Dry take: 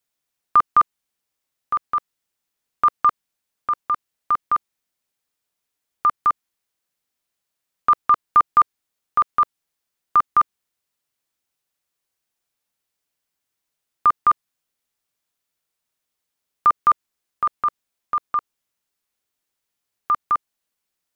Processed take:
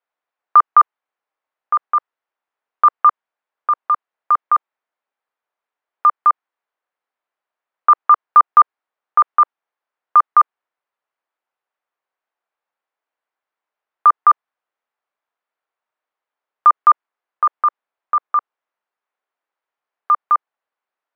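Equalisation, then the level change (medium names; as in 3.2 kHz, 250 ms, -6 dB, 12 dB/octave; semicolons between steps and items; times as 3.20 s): high-pass 680 Hz 12 dB/octave; low-pass 1.3 kHz 12 dB/octave; +8.0 dB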